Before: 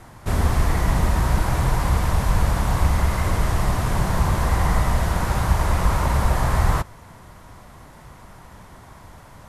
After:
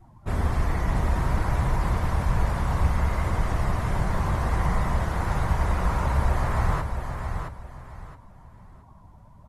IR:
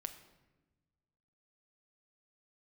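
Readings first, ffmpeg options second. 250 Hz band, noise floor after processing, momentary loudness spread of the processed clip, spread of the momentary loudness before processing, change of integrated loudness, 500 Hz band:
-4.0 dB, -50 dBFS, 8 LU, 2 LU, -4.5 dB, -4.0 dB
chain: -af "afftdn=nr=18:nf=-40,aecho=1:1:669|1338|2007:0.473|0.128|0.0345,volume=-5dB"

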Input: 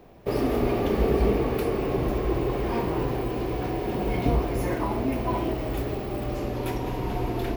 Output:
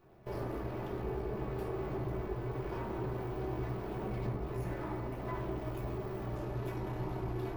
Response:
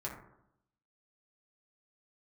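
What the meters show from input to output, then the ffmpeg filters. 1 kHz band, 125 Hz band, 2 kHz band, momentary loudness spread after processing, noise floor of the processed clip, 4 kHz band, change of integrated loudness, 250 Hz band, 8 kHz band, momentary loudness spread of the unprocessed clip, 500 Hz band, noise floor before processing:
-12.0 dB, -8.5 dB, -12.0 dB, 2 LU, -41 dBFS, -16.5 dB, -12.0 dB, -13.0 dB, under -15 dB, 6 LU, -12.5 dB, -31 dBFS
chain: -filter_complex "[0:a]acompressor=threshold=-26dB:ratio=6,aeval=exprs='max(val(0),0)':c=same[a];[1:a]atrim=start_sample=2205[b];[a][b]afir=irnorm=-1:irlink=0,volume=-7dB"

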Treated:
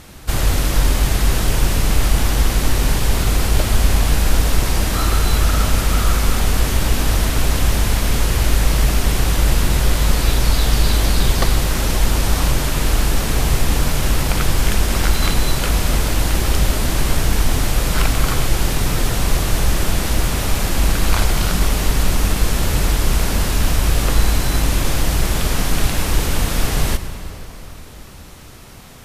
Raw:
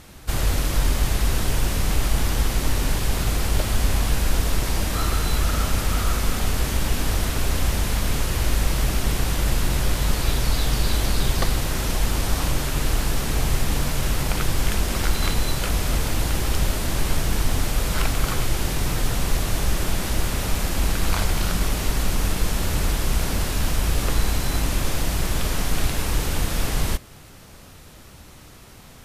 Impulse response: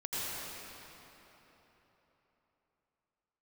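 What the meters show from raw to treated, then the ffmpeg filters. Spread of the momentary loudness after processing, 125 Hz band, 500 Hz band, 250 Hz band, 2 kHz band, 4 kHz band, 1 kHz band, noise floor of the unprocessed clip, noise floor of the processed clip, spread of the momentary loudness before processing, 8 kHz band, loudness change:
3 LU, +5.5 dB, +5.5 dB, +5.5 dB, +5.5 dB, +5.0 dB, +5.5 dB, -44 dBFS, -36 dBFS, 2 LU, +5.0 dB, +5.5 dB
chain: -filter_complex "[0:a]asplit=2[a][b];[1:a]atrim=start_sample=2205[c];[b][c]afir=irnorm=-1:irlink=0,volume=-14.5dB[d];[a][d]amix=inputs=2:normalize=0,volume=4dB"

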